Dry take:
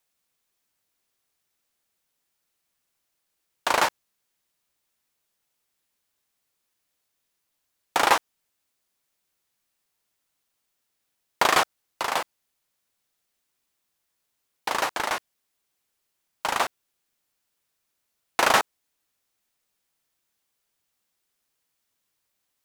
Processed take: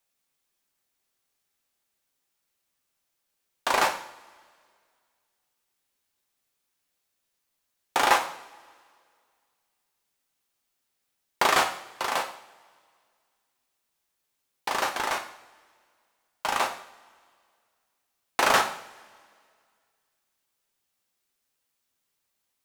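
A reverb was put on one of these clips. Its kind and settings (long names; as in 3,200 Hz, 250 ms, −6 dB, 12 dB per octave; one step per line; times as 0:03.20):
coupled-rooms reverb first 0.56 s, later 2.1 s, from −19 dB, DRR 4 dB
level −2.5 dB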